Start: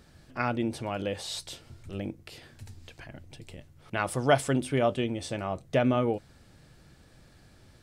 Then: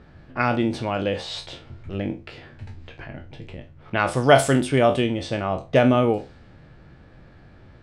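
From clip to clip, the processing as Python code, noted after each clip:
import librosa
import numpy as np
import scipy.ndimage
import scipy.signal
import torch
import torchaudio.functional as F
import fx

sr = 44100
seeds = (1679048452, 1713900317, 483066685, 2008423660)

y = fx.spec_trails(x, sr, decay_s=0.3)
y = fx.env_lowpass(y, sr, base_hz=2100.0, full_db=-20.0)
y = y * 10.0 ** (7.0 / 20.0)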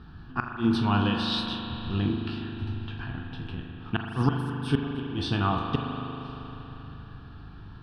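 y = fx.gate_flip(x, sr, shuts_db=-10.0, range_db=-25)
y = fx.fixed_phaser(y, sr, hz=2100.0, stages=6)
y = fx.rev_spring(y, sr, rt60_s=3.9, pass_ms=(39,), chirp_ms=65, drr_db=2.0)
y = y * 10.0 ** (3.0 / 20.0)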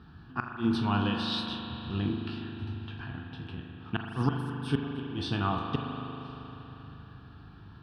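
y = scipy.signal.sosfilt(scipy.signal.butter(2, 68.0, 'highpass', fs=sr, output='sos'), x)
y = y * 10.0 ** (-3.5 / 20.0)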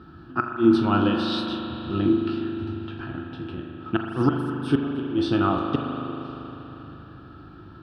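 y = fx.small_body(x, sr, hz=(340.0, 550.0, 1300.0), ring_ms=45, db=15)
y = y * 10.0 ** (2.0 / 20.0)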